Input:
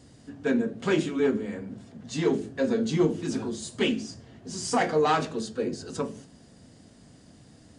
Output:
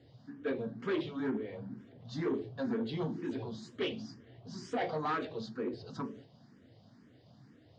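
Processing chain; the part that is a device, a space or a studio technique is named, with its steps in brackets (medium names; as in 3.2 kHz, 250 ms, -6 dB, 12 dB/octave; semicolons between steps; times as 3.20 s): barber-pole phaser into a guitar amplifier (barber-pole phaser +2.1 Hz; saturation -23.5 dBFS, distortion -13 dB; cabinet simulation 110–4400 Hz, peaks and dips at 120 Hz +9 dB, 170 Hz -3 dB, 2.6 kHz -5 dB); trim -3.5 dB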